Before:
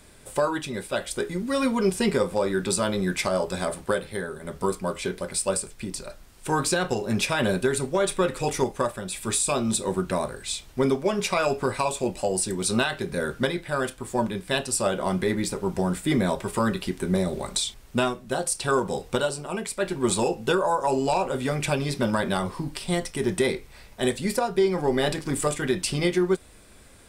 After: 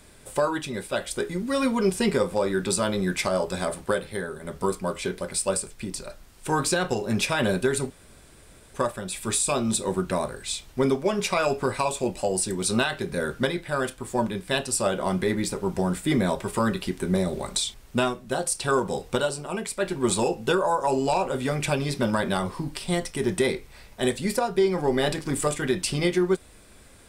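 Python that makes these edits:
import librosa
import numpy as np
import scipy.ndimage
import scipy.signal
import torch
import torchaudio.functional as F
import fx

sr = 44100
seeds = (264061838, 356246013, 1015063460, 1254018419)

y = fx.edit(x, sr, fx.room_tone_fill(start_s=7.9, length_s=0.84), tone=tone)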